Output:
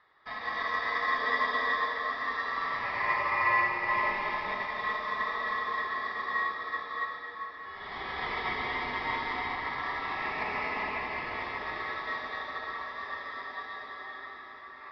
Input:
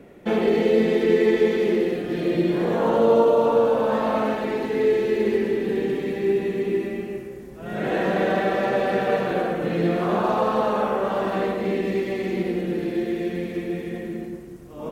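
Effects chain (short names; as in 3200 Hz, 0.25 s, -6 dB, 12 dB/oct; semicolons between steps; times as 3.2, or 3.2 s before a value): band shelf 2900 Hz +13.5 dB 1.2 oct; notch 2600 Hz, Q 7.3; ring modulator 1500 Hz; air absorption 210 m; diffused feedback echo 0.667 s, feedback 71%, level -14 dB; plate-style reverb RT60 4.4 s, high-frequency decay 0.6×, pre-delay 0.11 s, DRR -2.5 dB; upward expander 1.5:1, over -27 dBFS; gain -8.5 dB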